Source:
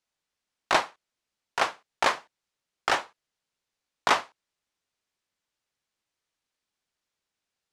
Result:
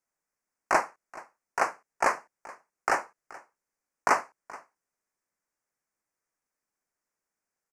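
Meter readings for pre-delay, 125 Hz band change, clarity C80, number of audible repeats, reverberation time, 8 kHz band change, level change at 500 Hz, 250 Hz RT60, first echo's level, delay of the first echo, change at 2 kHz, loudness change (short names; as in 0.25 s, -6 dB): none, n/a, none, 1, none, -1.0 dB, 0.0 dB, none, -20.5 dB, 0.427 s, -1.5 dB, -1.5 dB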